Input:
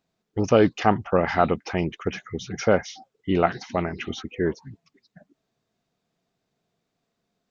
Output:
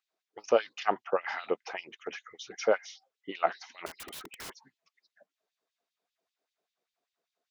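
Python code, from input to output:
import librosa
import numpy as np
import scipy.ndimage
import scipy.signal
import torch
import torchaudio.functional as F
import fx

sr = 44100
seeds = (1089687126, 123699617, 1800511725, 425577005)

y = fx.filter_lfo_highpass(x, sr, shape='sine', hz=5.1, low_hz=400.0, high_hz=3400.0, q=1.6)
y = fx.overflow_wrap(y, sr, gain_db=29.5, at=(3.86, 4.5))
y = y * 10.0 ** (-8.0 / 20.0)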